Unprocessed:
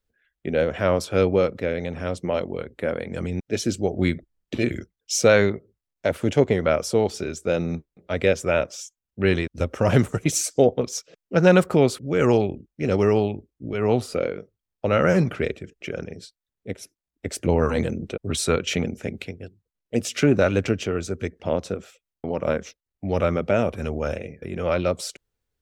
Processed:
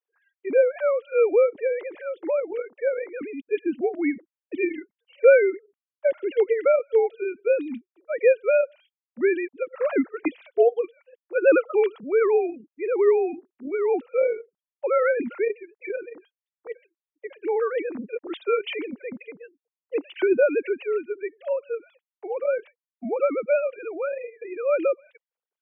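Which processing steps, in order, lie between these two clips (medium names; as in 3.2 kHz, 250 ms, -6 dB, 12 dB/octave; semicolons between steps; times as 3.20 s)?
formants replaced by sine waves; trim -1 dB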